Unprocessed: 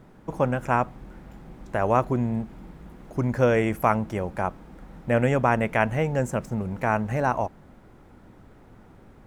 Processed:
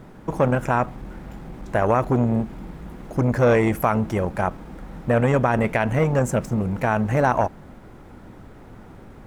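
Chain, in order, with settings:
brickwall limiter −14 dBFS, peak gain reduction 8 dB
saturating transformer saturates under 390 Hz
level +7.5 dB

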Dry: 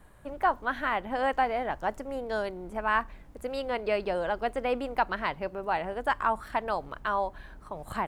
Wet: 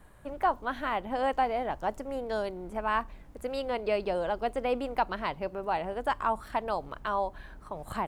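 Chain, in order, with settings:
dynamic equaliser 1,700 Hz, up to −6 dB, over −43 dBFS, Q 1.6

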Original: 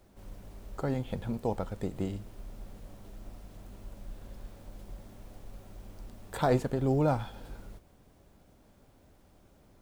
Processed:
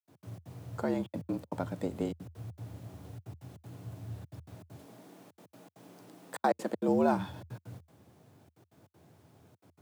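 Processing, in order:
0:04.75–0:06.88: high-pass filter 130 Hz 12 dB per octave
gate pattern ".x.xx.xxxxxxxx" 198 BPM −60 dB
frequency shifter +78 Hz

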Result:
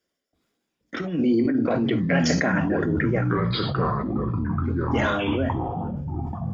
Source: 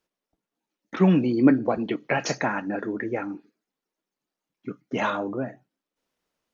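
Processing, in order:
low-shelf EQ 450 Hz −2.5 dB
compressor whose output falls as the input rises −23 dBFS, ratio −0.5
convolution reverb, pre-delay 3 ms, DRR 10 dB
delay with pitch and tempo change per echo 339 ms, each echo −6 semitones, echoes 3
level that may fall only so fast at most 27 dB per second

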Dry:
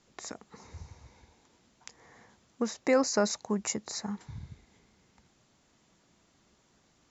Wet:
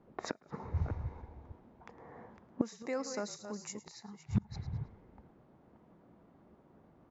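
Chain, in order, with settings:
delay that plays each chunk backwards 304 ms, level −9 dB
low-pass that shuts in the quiet parts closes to 780 Hz, open at −29 dBFS
noise reduction from a noise print of the clip's start 8 dB
on a send: echo with shifted repeats 108 ms, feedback 35%, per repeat −46 Hz, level −17.5 dB
on the sum: gate with flip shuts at −33 dBFS, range −28 dB
low-shelf EQ 66 Hz −9.5 dB
level +16 dB

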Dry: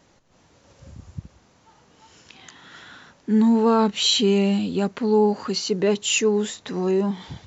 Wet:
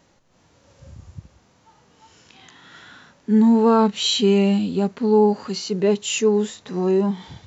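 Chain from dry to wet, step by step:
harmonic and percussive parts rebalanced percussive −9 dB
level +2.5 dB

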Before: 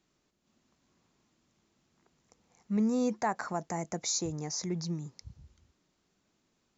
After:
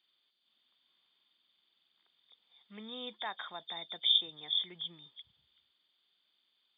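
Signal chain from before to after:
hearing-aid frequency compression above 2,900 Hz 4 to 1
first difference
level +8.5 dB

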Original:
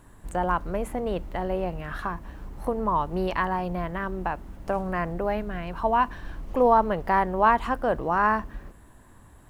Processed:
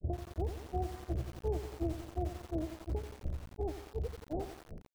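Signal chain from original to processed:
source passing by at 0:02.98, 8 m/s, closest 8.5 metres
in parallel at −7 dB: sample-and-hold swept by an LFO 17×, swing 160% 0.63 Hz
on the sum: low-shelf EQ 150 Hz +6.5 dB
change of speed 1.92×
mains-hum notches 50/100/150/200/250 Hz
granular cloud 187 ms, grains 2.8 per second
Butterworth low-pass 750 Hz 72 dB per octave
downward compressor 6 to 1, threshold −50 dBFS, peak gain reduction 25 dB
feedback echo at a low word length 88 ms, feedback 80%, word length 10 bits, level −8 dB
level +15.5 dB

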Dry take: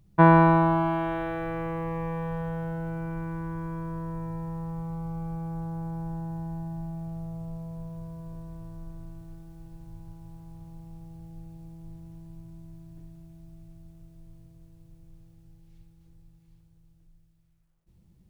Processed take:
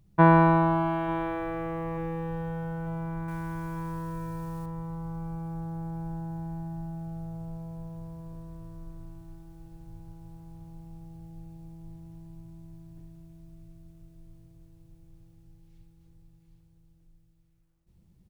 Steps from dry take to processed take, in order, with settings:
0:03.28–0:04.66: high-shelf EQ 2,100 Hz +12 dB
repeating echo 893 ms, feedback 60%, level −20 dB
level −1.5 dB

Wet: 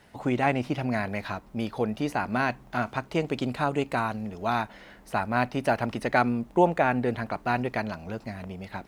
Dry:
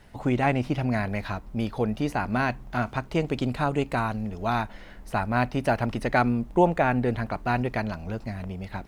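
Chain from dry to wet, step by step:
high-pass filter 180 Hz 6 dB per octave

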